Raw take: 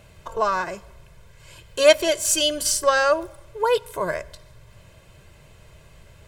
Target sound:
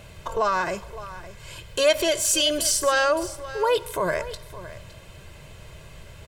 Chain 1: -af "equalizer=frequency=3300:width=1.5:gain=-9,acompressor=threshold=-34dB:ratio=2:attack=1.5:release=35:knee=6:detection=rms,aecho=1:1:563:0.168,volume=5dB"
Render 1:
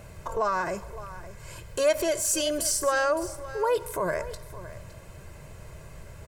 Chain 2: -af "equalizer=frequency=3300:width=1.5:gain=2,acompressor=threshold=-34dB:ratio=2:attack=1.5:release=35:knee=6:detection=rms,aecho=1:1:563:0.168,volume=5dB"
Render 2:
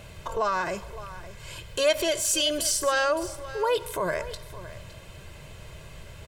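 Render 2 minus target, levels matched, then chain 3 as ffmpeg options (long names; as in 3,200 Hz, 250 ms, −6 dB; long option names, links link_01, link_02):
downward compressor: peak gain reduction +3 dB
-af "equalizer=frequency=3300:width=1.5:gain=2,acompressor=threshold=-27.5dB:ratio=2:attack=1.5:release=35:knee=6:detection=rms,aecho=1:1:563:0.168,volume=5dB"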